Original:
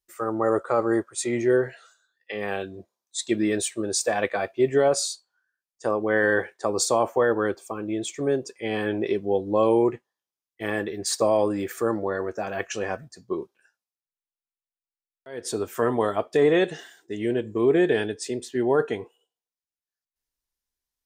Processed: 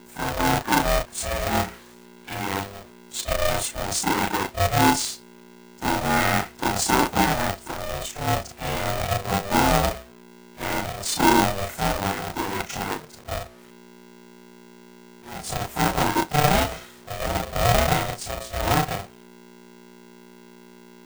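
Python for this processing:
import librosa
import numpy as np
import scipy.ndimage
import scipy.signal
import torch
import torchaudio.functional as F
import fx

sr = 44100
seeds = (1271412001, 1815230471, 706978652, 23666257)

y = fx.frame_reverse(x, sr, frame_ms=82.0)
y = fx.hum_notches(y, sr, base_hz=60, count=6)
y = fx.small_body(y, sr, hz=(620.0, 3900.0), ring_ms=100, db=10)
y = fx.add_hum(y, sr, base_hz=60, snr_db=25)
y = fx.quant_companded(y, sr, bits=4)
y = y * np.sign(np.sin(2.0 * np.pi * 300.0 * np.arange(len(y)) / sr))
y = F.gain(torch.from_numpy(y), 3.0).numpy()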